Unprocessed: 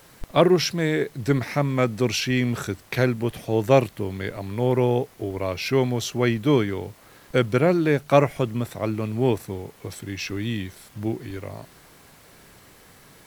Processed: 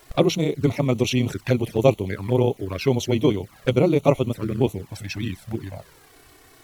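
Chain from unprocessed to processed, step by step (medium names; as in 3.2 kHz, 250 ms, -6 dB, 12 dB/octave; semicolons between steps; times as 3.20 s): granular stretch 0.5×, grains 62 ms; touch-sensitive flanger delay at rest 3 ms, full sweep at -20.5 dBFS; trim +3.5 dB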